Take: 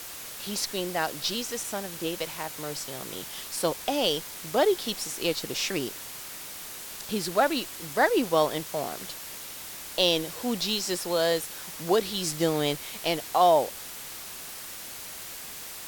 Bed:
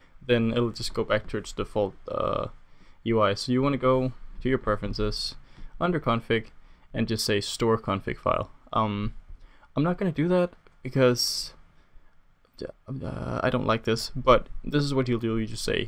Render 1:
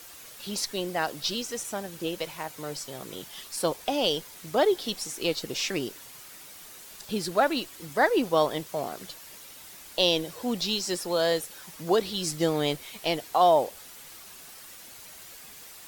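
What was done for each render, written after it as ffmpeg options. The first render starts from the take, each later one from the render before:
ffmpeg -i in.wav -af "afftdn=noise_reduction=8:noise_floor=-41" out.wav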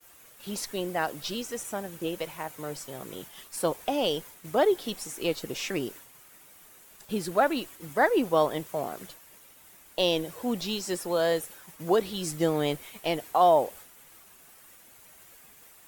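ffmpeg -i in.wav -af "equalizer=frequency=4600:width_type=o:width=1.1:gain=-8,agate=range=-33dB:threshold=-42dB:ratio=3:detection=peak" out.wav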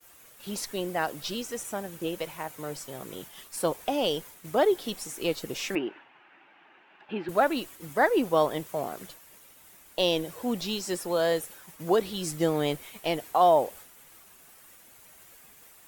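ffmpeg -i in.wav -filter_complex "[0:a]asettb=1/sr,asplit=3[link_01][link_02][link_03];[link_01]atrim=end=5.754[link_04];[link_02]atrim=start=5.75:end=7.29,asetpts=PTS-STARTPTS,afade=type=in:duration=0.004:curve=qsin,afade=type=out:start_time=1.536:duration=0.004:curve=qsin,highpass=250,equalizer=frequency=330:width_type=q:width=4:gain=7,equalizer=frequency=470:width_type=q:width=4:gain=-6,equalizer=frequency=840:width_type=q:width=4:gain=9,equalizer=frequency=1600:width_type=q:width=4:gain=6,equalizer=frequency=2700:width_type=q:width=4:gain=7,lowpass=frequency=2800:width=0.5412,lowpass=frequency=2800:width=1.3066[link_05];[link_03]atrim=start=7.286[link_06];[link_04][link_05]acrossfade=duration=0.004:curve1=hsin:curve2=qsin[link_07];[link_07][link_06]acrossfade=duration=0.004:curve1=qsin:curve2=hsin" out.wav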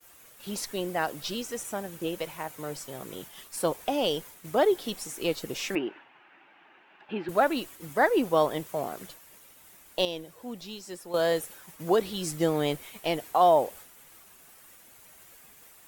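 ffmpeg -i in.wav -filter_complex "[0:a]asplit=3[link_01][link_02][link_03];[link_01]atrim=end=10.052[link_04];[link_02]atrim=start=10.048:end=11.142,asetpts=PTS-STARTPTS,volume=-9.5dB[link_05];[link_03]atrim=start=11.138[link_06];[link_04][link_05]acrossfade=duration=0.004:curve1=hsin:curve2=hsin[link_07];[link_07][link_06]acrossfade=duration=0.004:curve1=hsin:curve2=hsin" out.wav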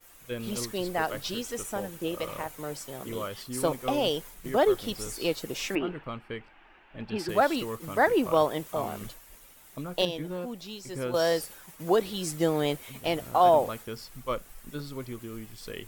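ffmpeg -i in.wav -i bed.wav -filter_complex "[1:a]volume=-13dB[link_01];[0:a][link_01]amix=inputs=2:normalize=0" out.wav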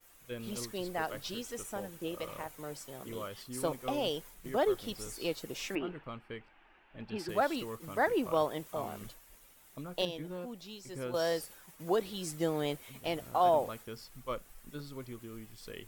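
ffmpeg -i in.wav -af "volume=-6.5dB" out.wav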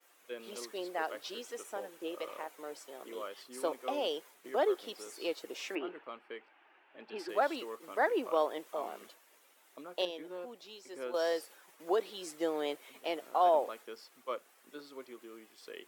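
ffmpeg -i in.wav -af "highpass=frequency=320:width=0.5412,highpass=frequency=320:width=1.3066,highshelf=frequency=6400:gain=-9" out.wav

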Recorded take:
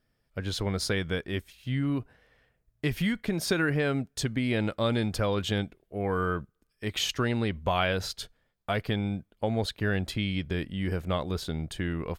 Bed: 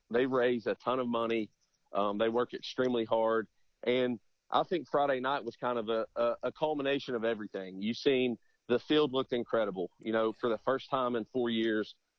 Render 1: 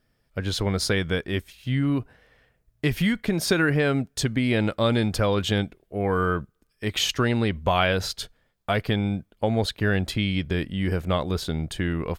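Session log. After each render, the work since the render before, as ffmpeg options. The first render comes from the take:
ffmpeg -i in.wav -af "volume=5dB" out.wav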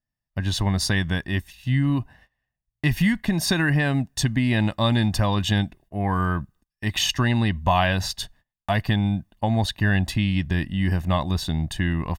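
ffmpeg -i in.wav -af "agate=range=-22dB:threshold=-53dB:ratio=16:detection=peak,aecho=1:1:1.1:0.75" out.wav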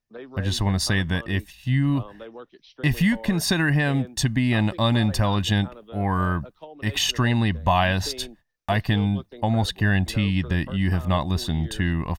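ffmpeg -i in.wav -i bed.wav -filter_complex "[1:a]volume=-10.5dB[link_01];[0:a][link_01]amix=inputs=2:normalize=0" out.wav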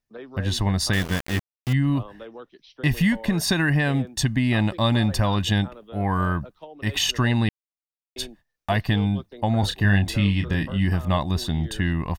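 ffmpeg -i in.wav -filter_complex "[0:a]asettb=1/sr,asplit=3[link_01][link_02][link_03];[link_01]atrim=end=0.934[link_04];[link_02]atrim=start=0.93:end=1.73,asetpts=PTS-STARTPTS,afade=type=in:duration=0.004:curve=qsin,afade=type=out:start_time=0.796:duration=0.004:curve=qsin,aeval=exprs='val(0)*gte(abs(val(0)),0.0473)':channel_layout=same[link_05];[link_03]atrim=start=1.726[link_06];[link_04][link_05]acrossfade=duration=0.004:curve1=hsin:curve2=qsin[link_07];[link_07][link_06]acrossfade=duration=0.004:curve1=qsin:curve2=hsin,asettb=1/sr,asplit=3[link_08][link_09][link_10];[link_08]atrim=end=9.604[link_11];[link_09]atrim=start=9.6:end=10.85,asetpts=PTS-STARTPTS,afade=type=in:duration=0.004:curve=qsin,afade=type=out:start_time=1.246:duration=0.004:curve=qsin,asplit=2[link_12][link_13];[link_13]adelay=30,volume=-7dB[link_14];[link_12][link_14]amix=inputs=2:normalize=0,atrim=end_sample=55125[link_15];[link_10]atrim=start=10.846[link_16];[link_11][link_15]acrossfade=duration=0.004:curve1=hsin:curve2=qsin[link_17];[link_17][link_16]acrossfade=duration=0.004:curve1=qsin:curve2=hsin,asplit=3[link_18][link_19][link_20];[link_18]atrim=end=7.49,asetpts=PTS-STARTPTS,afade=type=out:start_time=7.486:duration=0.004:curve=hsin[link_21];[link_19]atrim=start=7.49:end=8.16,asetpts=PTS-STARTPTS,volume=0[link_22];[link_20]atrim=start=8.16,asetpts=PTS-STARTPTS,afade=type=in:duration=0.004:curve=hsin[link_23];[link_21][link_22][link_23]concat=n=3:v=0:a=1" out.wav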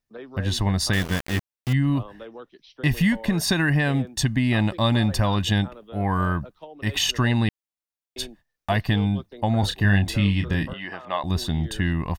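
ffmpeg -i in.wav -filter_complex "[0:a]asettb=1/sr,asplit=3[link_01][link_02][link_03];[link_01]atrim=end=10.734[link_04];[link_02]atrim=start=10.73:end=11.24,asetpts=PTS-STARTPTS,afade=type=in:duration=0.004:curve=qsin,afade=type=out:start_time=0.506:duration=0.004:curve=qsin,highpass=540,lowpass=3300[link_05];[link_03]atrim=start=11.236[link_06];[link_04][link_05]acrossfade=duration=0.004:curve1=hsin:curve2=qsin[link_07];[link_07][link_06]acrossfade=duration=0.004:curve1=qsin:curve2=hsin" out.wav

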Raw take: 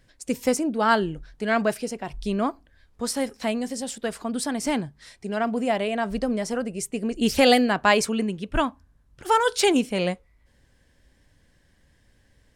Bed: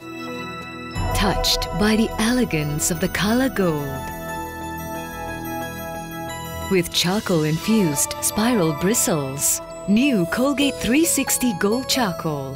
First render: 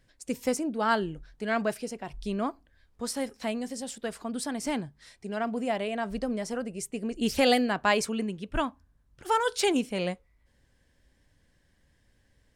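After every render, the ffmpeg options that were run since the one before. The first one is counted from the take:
ffmpeg -i in.wav -af "volume=-5.5dB" out.wav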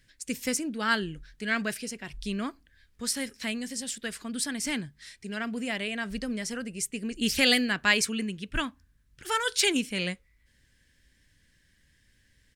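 ffmpeg -i in.wav -af "firequalizer=gain_entry='entry(200,0);entry(740,-11);entry(1700,6)':delay=0.05:min_phase=1" out.wav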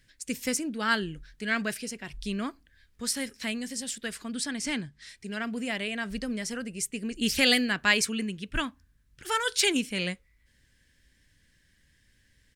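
ffmpeg -i in.wav -filter_complex "[0:a]asettb=1/sr,asplit=3[link_01][link_02][link_03];[link_01]atrim=end=4.344[link_04];[link_02]atrim=start=4.34:end=5.09,asetpts=PTS-STARTPTS,afade=type=in:duration=0.004:curve=qsin,afade=type=out:start_time=0.746:duration=0.004:curve=qsin,lowpass=8500[link_05];[link_03]atrim=start=5.086[link_06];[link_04][link_05]acrossfade=duration=0.004:curve1=hsin:curve2=qsin[link_07];[link_07][link_06]acrossfade=duration=0.004:curve1=qsin:curve2=hsin" out.wav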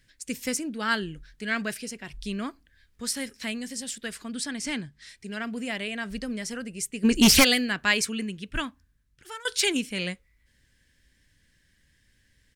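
ffmpeg -i in.wav -filter_complex "[0:a]asplit=3[link_01][link_02][link_03];[link_01]afade=type=out:start_time=7.03:duration=0.02[link_04];[link_02]aeval=exprs='0.282*sin(PI/2*3.16*val(0)/0.282)':channel_layout=same,afade=type=in:start_time=7.03:duration=0.02,afade=type=out:start_time=7.43:duration=0.02[link_05];[link_03]afade=type=in:start_time=7.43:duration=0.02[link_06];[link_04][link_05][link_06]amix=inputs=3:normalize=0,asplit=2[link_07][link_08];[link_07]atrim=end=9.45,asetpts=PTS-STARTPTS,afade=type=out:start_time=8.39:duration=1.06:curve=qsin:silence=0.125893[link_09];[link_08]atrim=start=9.45,asetpts=PTS-STARTPTS,afade=type=in:duration=0.004:curve=hsin:silence=0.125893[link_10];[link_09][link_10]concat=n=2:v=0:a=1" out.wav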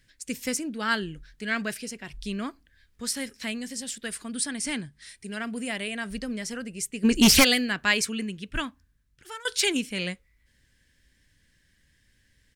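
ffmpeg -i in.wav -filter_complex "[0:a]asettb=1/sr,asplit=3[link_01][link_02][link_03];[link_01]atrim=end=4.054[link_04];[link_02]atrim=start=4.05:end=6.16,asetpts=PTS-STARTPTS,afade=type=in:duration=0.004:curve=qsin,afade=type=out:start_time=2.106:duration=0.004:curve=qsin,equalizer=frequency=9300:width_type=o:width=0.24:gain=11[link_05];[link_03]atrim=start=6.156[link_06];[link_04][link_05]acrossfade=duration=0.004:curve1=hsin:curve2=qsin[link_07];[link_07][link_06]acrossfade=duration=0.004:curve1=qsin:curve2=hsin" out.wav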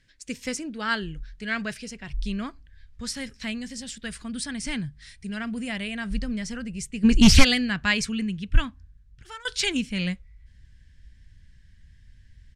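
ffmpeg -i in.wav -af "lowpass=6800,asubboost=boost=8:cutoff=130" out.wav

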